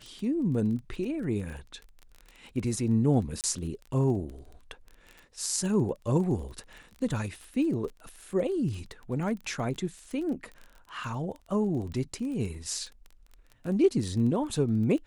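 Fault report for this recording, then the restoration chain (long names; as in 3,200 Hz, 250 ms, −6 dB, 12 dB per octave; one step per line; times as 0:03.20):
surface crackle 20 per second −36 dBFS
0:03.41–0:03.44: drop-out 28 ms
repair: click removal
repair the gap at 0:03.41, 28 ms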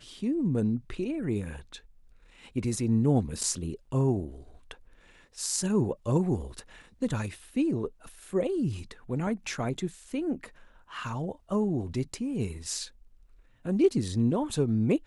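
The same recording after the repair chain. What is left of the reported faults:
none of them is left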